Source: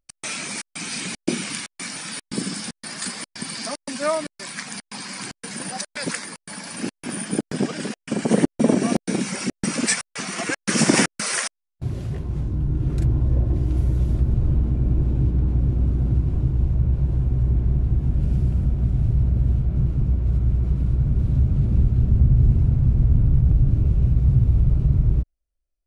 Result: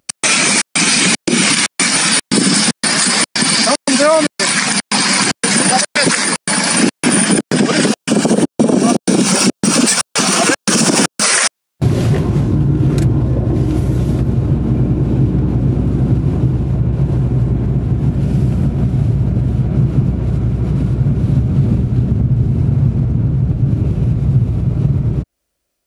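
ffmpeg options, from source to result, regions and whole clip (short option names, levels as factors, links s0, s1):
-filter_complex "[0:a]asettb=1/sr,asplit=3[s0][s1][s2];[s0]atrim=end=7.864[s3];[s1]atrim=start=7.86:end=11.24,asetpts=PTS-STARTPTS,afade=t=in:d=0.004:c=qsin,afade=t=out:st=3.376:d=0.004:c=qsin,aeval=exprs='if(lt(val(0),0),0.708*val(0),val(0))':c=same,equalizer=f=2000:w=3.3:g=-11[s4];[s2]atrim=start=11.236[s5];[s3][s4]acrossfade=d=0.004:c1=hsin:c2=qsin[s6];[s6][s5]acrossfade=d=0.004:c1=qsin:c2=hsin,acompressor=threshold=0.0631:ratio=6,highpass=140,alimiter=level_in=12.6:limit=0.891:release=50:level=0:latency=1,volume=0.891"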